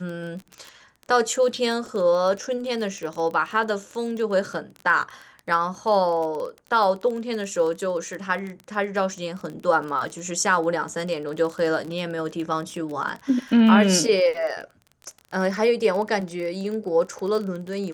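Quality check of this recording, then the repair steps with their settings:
surface crackle 21 per second −29 dBFS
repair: click removal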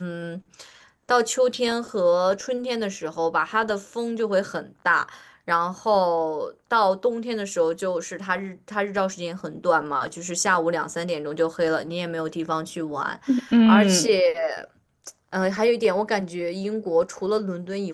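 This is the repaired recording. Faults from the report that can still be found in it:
none of them is left

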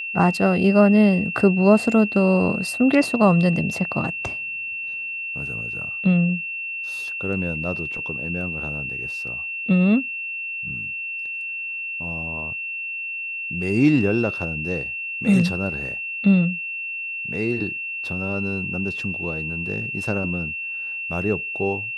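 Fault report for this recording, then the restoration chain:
whistle 2,700 Hz −27 dBFS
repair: notch filter 2,700 Hz, Q 30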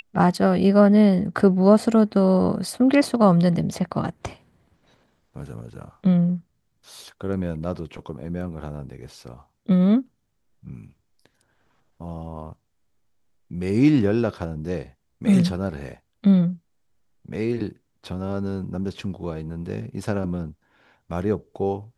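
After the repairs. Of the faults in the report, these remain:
none of them is left

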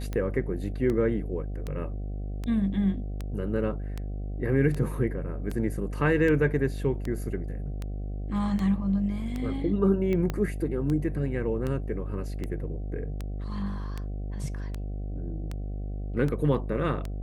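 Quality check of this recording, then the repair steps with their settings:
mains buzz 50 Hz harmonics 15 −33 dBFS
scratch tick 78 rpm −20 dBFS
0:10.30: click −16 dBFS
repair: click removal
hum removal 50 Hz, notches 15

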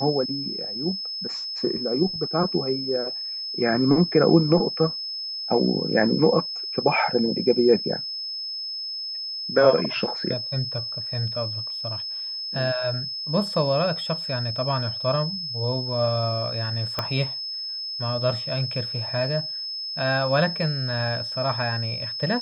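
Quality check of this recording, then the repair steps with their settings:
whistle 5,200 Hz −29 dBFS
0:16.99: click −10 dBFS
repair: click removal
notch filter 5,200 Hz, Q 30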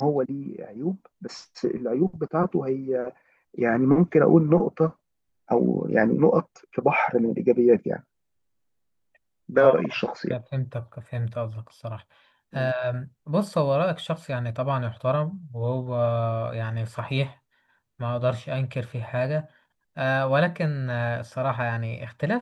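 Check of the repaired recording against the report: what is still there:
0:16.99: click

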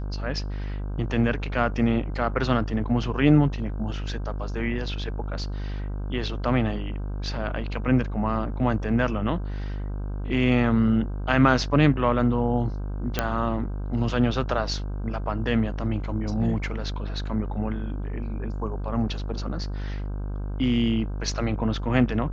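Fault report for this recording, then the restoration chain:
mains buzz 50 Hz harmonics 32 −30 dBFS
0:13.19: click −7 dBFS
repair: click removal
hum removal 50 Hz, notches 32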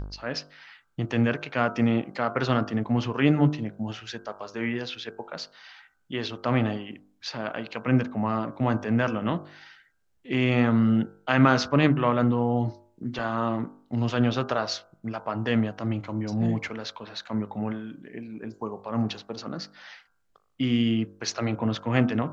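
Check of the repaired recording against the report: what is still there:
none of them is left

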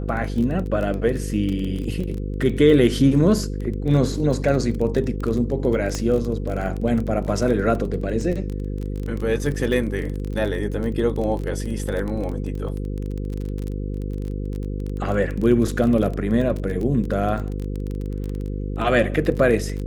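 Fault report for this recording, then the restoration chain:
mains buzz 50 Hz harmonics 10 −27 dBFS
surface crackle 21 per second −26 dBFS
0:05.95: click −12 dBFS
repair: click removal
hum removal 50 Hz, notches 10

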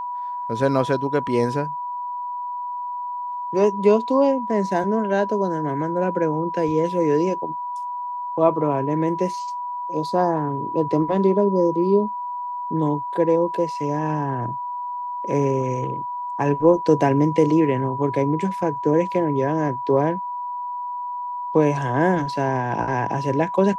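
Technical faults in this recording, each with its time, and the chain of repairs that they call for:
whistle 980 Hz −26 dBFS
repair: notch filter 980 Hz, Q 30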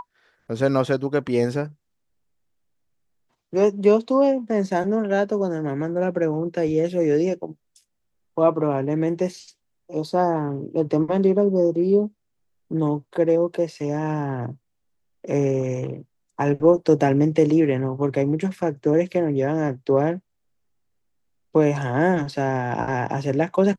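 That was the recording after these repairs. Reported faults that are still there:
none of them is left

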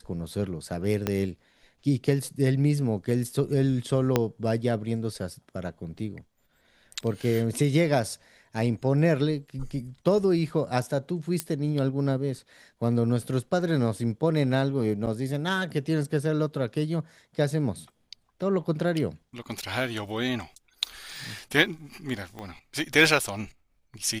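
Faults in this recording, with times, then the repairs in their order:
0:01.07: click −11 dBFS
0:04.16: click −7 dBFS
0:11.40: click −11 dBFS
0:15.06–0:15.07: drop-out 8.6 ms
0:22.39: click −24 dBFS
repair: click removal
repair the gap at 0:15.06, 8.6 ms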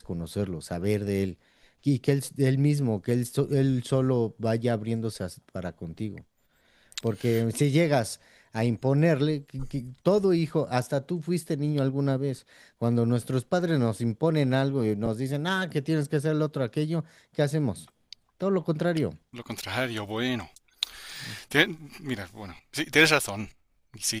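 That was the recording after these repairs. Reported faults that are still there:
0:01.07: click
0:04.16: click
0:22.39: click

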